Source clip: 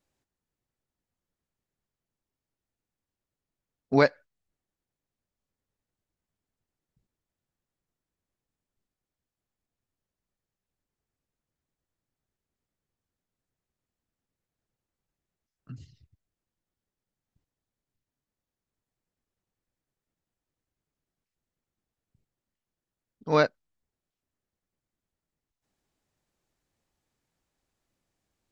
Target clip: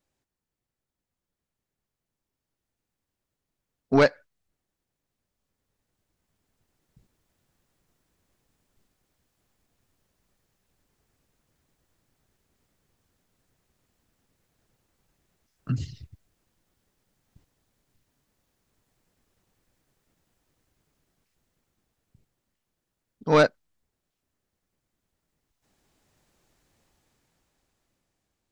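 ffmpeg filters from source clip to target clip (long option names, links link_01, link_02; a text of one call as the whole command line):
ffmpeg -i in.wav -af "dynaudnorm=framelen=610:gausssize=7:maxgain=15.5dB,asoftclip=type=tanh:threshold=-10dB" out.wav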